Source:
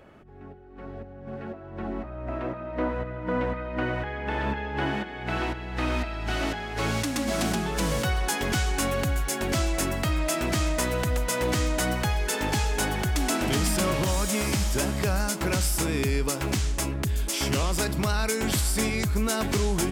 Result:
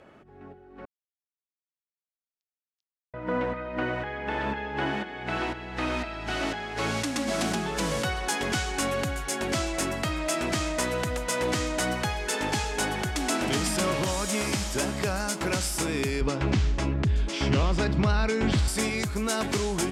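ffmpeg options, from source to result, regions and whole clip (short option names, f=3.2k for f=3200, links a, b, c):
-filter_complex "[0:a]asettb=1/sr,asplit=3[a][b][c];[a]atrim=end=0.854[d];[b]atrim=start=0.85:end=3.14,asetpts=PTS-STARTPTS,afade=t=in:d=0.004:c=qsin,afade=t=out:st=2.286:d=0.004:c=qsin,asuperpass=centerf=5000:order=12:qfactor=2.4,aeval=exprs='sgn(val(0))*max(abs(val(0))-0.00126,0)':c=same[e];[c]atrim=start=3.136[f];[d][e]acrossfade=d=0.004:c1=hsin:c2=qsin[g];[g][f]acrossfade=d=0.004:c1=qsin:c2=hsin,asettb=1/sr,asplit=3[h][i][j];[h]atrim=end=16.214[k];[i]atrim=start=16.21:end=18.68,asetpts=PTS-STARTPTS,afade=t=in:d=0.004:c=qsin,afade=t=out:st=2.466:d=0.004:c=qsin,lowpass=4.1k,lowshelf=f=200:g=11.5[l];[j]atrim=start=18.676[m];[k][l]acrossfade=d=0.004:c1=hsin:c2=qsin[n];[n][m]acrossfade=d=0.004:c1=qsin:c2=hsin,lowpass=10k,lowshelf=f=96:g=-11.5"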